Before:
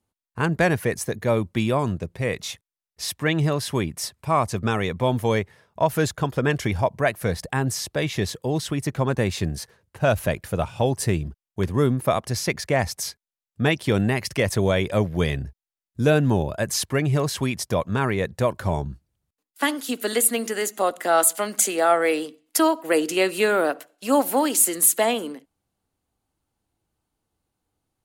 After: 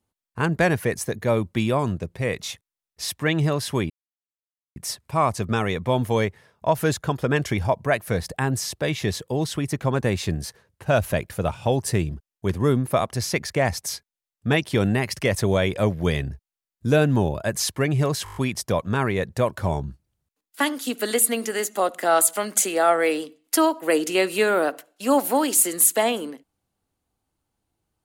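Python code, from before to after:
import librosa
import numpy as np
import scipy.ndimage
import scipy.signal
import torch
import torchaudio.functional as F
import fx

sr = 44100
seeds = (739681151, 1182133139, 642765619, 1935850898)

y = fx.edit(x, sr, fx.insert_silence(at_s=3.9, length_s=0.86),
    fx.stutter(start_s=17.38, slice_s=0.02, count=7), tone=tone)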